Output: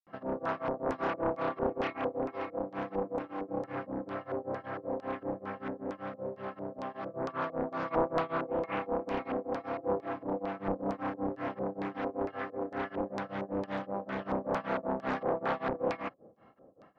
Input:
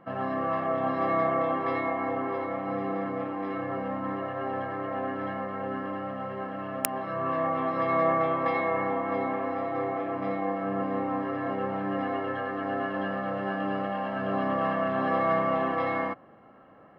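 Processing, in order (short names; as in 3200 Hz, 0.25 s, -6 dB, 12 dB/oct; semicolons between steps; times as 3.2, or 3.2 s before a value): wrapped overs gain 14 dB; grains 0.222 s, grains 5.2/s, pitch spread up and down by 0 st; LFO low-pass square 2.2 Hz 500–5000 Hz; Doppler distortion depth 0.77 ms; gain -3 dB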